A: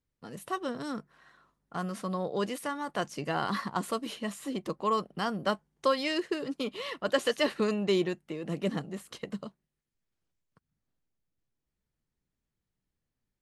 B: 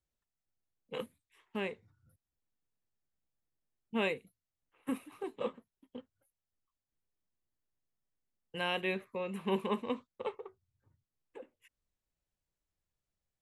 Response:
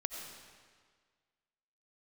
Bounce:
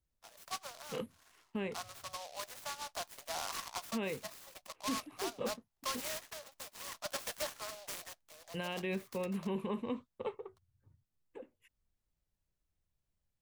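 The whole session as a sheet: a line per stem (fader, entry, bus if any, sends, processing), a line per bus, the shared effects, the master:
-6.0 dB, 0.00 s, no send, Chebyshev high-pass 620 Hz, order 5; overload inside the chain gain 26.5 dB; delay time shaken by noise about 4 kHz, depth 0.12 ms
-3.0 dB, 0.00 s, no send, bass shelf 280 Hz +10 dB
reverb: none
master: peak limiter -27.5 dBFS, peak gain reduction 8.5 dB

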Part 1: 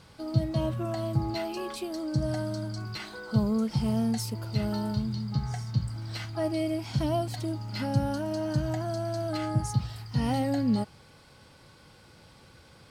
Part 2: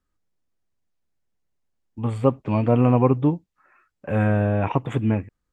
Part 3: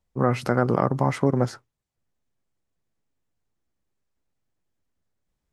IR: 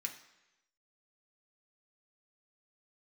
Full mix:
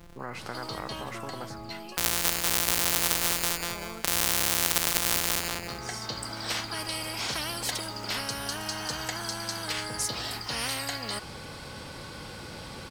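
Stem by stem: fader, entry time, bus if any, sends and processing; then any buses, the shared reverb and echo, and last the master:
+1.5 dB, 0.35 s, no send, no echo send, auto duck -18 dB, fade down 1.85 s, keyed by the second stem
-0.5 dB, 0.00 s, no send, echo send -5 dB, sorted samples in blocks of 256 samples; gate -48 dBFS, range -23 dB; level flattener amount 50%
-19.5 dB, 0.00 s, no send, no echo send, none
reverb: none
echo: feedback delay 192 ms, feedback 27%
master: spectrum-flattening compressor 10:1

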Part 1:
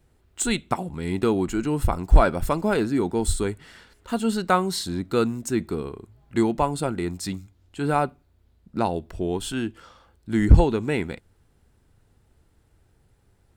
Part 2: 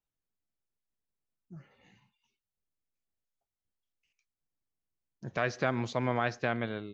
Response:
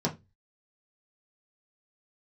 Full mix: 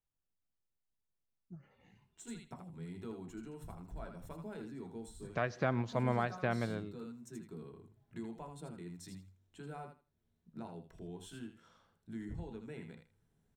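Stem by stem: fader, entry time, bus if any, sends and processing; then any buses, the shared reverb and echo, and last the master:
-17.0 dB, 1.80 s, send -10 dB, echo send -5 dB, compression 2:1, threshold -38 dBFS, peak gain reduction 16.5 dB; auto duck -11 dB, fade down 0.20 s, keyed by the second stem
-3.5 dB, 0.00 s, no send, no echo send, tilt shelf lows +5.5 dB, about 1.3 kHz; endings held to a fixed fall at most 210 dB/s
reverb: on, RT60 0.20 s, pre-delay 3 ms
echo: feedback delay 80 ms, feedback 19%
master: peaking EQ 350 Hz -4.5 dB 2.2 oct

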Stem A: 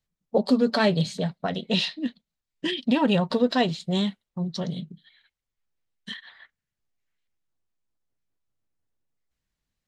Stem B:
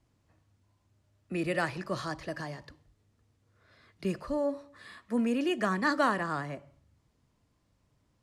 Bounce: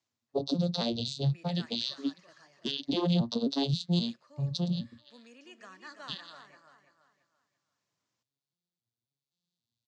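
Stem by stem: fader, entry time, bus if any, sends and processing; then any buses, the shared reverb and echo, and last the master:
-4.0 dB, 0.00 s, no send, no echo send, vocoder on a broken chord minor triad, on A#2, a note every 266 ms; resonant high shelf 2.7 kHz +13.5 dB, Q 3; peak limiter -15.5 dBFS, peak gain reduction 10 dB
-9.5 dB, 0.00 s, no send, echo send -18.5 dB, elliptic band-pass 110–6700 Hz, stop band 40 dB; tilt EQ +3.5 dB/octave; auto duck -11 dB, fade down 0.35 s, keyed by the first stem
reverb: none
echo: feedback delay 337 ms, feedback 35%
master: none

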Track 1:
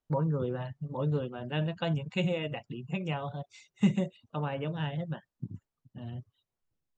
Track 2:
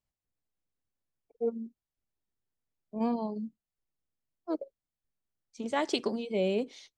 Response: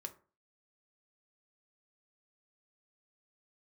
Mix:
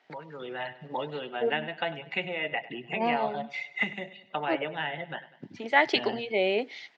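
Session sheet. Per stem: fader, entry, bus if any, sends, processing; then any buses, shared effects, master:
-3.5 dB, 0.00 s, no send, echo send -17 dB, three bands compressed up and down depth 100%
0.0 dB, 0.00 s, no send, no echo send, none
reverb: none
echo: feedback delay 99 ms, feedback 50%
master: level rider gain up to 8.5 dB; cabinet simulation 470–4200 Hz, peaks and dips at 520 Hz -6 dB, 780 Hz +4 dB, 1.1 kHz -8 dB, 2 kHz +10 dB, 3.7 kHz -3 dB

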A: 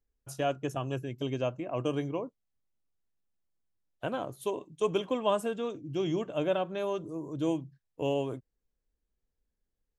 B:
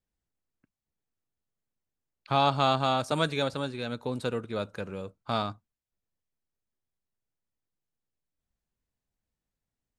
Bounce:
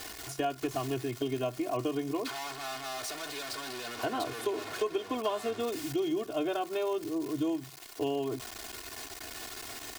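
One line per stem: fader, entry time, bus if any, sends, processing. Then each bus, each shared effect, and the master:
+1.5 dB, 0.00 s, no send, hum notches 50/100/150/200 Hz
-4.0 dB, 0.00 s, no send, one-bit comparator; high-pass 590 Hz 6 dB/octave; peaking EQ 4.7 kHz +2.5 dB 0.41 oct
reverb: none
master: treble shelf 6.6 kHz -4 dB; comb 2.8 ms, depth 98%; compression 6:1, threshold -28 dBFS, peak gain reduction 11 dB

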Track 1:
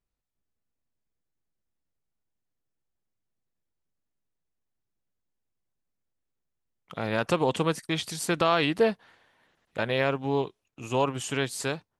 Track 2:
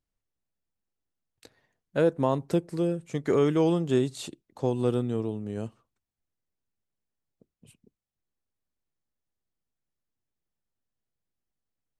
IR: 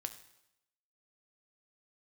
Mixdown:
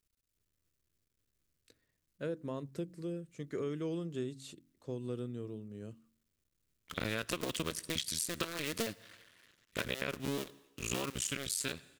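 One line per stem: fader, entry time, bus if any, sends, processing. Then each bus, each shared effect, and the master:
-1.0 dB, 0.00 s, send -8 dB, cycle switcher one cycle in 2, muted; treble shelf 2.6 kHz +11 dB
-11.5 dB, 0.25 s, no send, de-hum 45.01 Hz, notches 7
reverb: on, RT60 0.85 s, pre-delay 4 ms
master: peaking EQ 810 Hz -13 dB 0.57 oct; compression 10:1, threshold -32 dBFS, peak gain reduction 13.5 dB

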